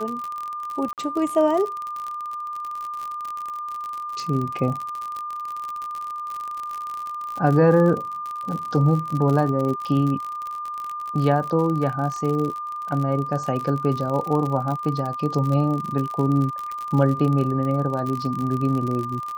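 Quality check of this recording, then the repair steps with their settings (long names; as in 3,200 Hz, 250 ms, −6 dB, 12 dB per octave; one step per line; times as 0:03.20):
surface crackle 54 per second −26 dBFS
whistle 1,200 Hz −28 dBFS
0:00.93–0:00.98: drop-out 48 ms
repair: click removal
notch filter 1,200 Hz, Q 30
repair the gap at 0:00.93, 48 ms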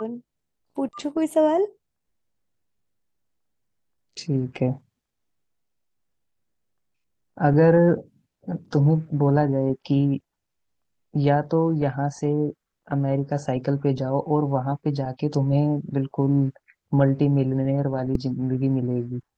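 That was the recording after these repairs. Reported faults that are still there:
whistle 1,200 Hz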